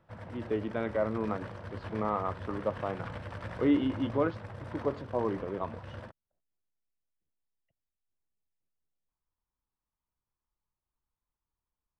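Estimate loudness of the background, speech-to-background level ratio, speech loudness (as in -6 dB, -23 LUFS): -43.5 LUFS, 10.5 dB, -33.0 LUFS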